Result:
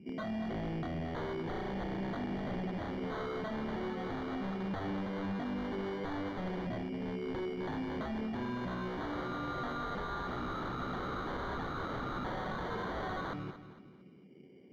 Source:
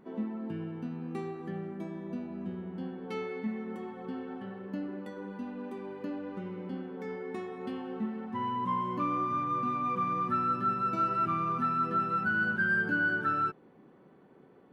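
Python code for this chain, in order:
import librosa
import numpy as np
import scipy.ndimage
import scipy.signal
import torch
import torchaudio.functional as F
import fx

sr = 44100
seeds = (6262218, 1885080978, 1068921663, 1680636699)

p1 = scipy.signal.sosfilt(scipy.signal.butter(4, 68.0, 'highpass', fs=sr, output='sos'), x)
p2 = fx.rider(p1, sr, range_db=5, speed_s=0.5)
p3 = p1 + F.gain(torch.from_numpy(p2), -0.5).numpy()
p4 = fx.comb_fb(p3, sr, f0_hz=190.0, decay_s=0.34, harmonics='all', damping=0.0, mix_pct=50)
p5 = fx.filter_lfo_lowpass(p4, sr, shape='saw_up', hz=0.15, low_hz=240.0, high_hz=3700.0, q=1.0)
p6 = fx.sample_hold(p5, sr, seeds[0], rate_hz=2600.0, jitter_pct=0)
p7 = 10.0 ** (-34.5 / 20.0) * (np.abs((p6 / 10.0 ** (-34.5 / 20.0) + 3.0) % 4.0 - 2.0) - 1.0)
p8 = fx.air_absorb(p7, sr, metres=290.0)
p9 = p8 + fx.echo_feedback(p8, sr, ms=227, feedback_pct=36, wet_db=-12.0, dry=0)
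y = F.gain(torch.from_numpy(p9), 2.5).numpy()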